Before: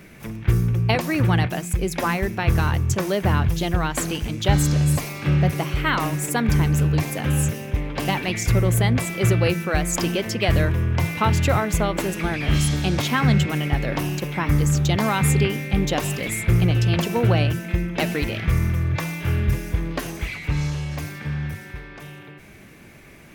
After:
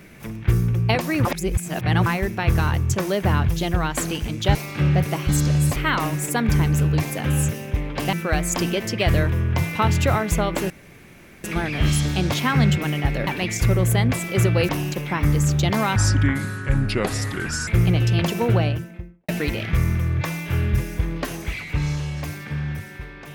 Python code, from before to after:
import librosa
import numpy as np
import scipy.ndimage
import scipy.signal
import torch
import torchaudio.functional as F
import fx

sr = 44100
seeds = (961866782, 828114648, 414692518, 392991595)

y = fx.studio_fade_out(x, sr, start_s=17.16, length_s=0.87)
y = fx.edit(y, sr, fx.reverse_span(start_s=1.25, length_s=0.81),
    fx.move(start_s=4.55, length_s=0.47, to_s=5.76),
    fx.move(start_s=8.13, length_s=1.42, to_s=13.95),
    fx.insert_room_tone(at_s=12.12, length_s=0.74),
    fx.speed_span(start_s=15.22, length_s=1.2, speed=0.7), tone=tone)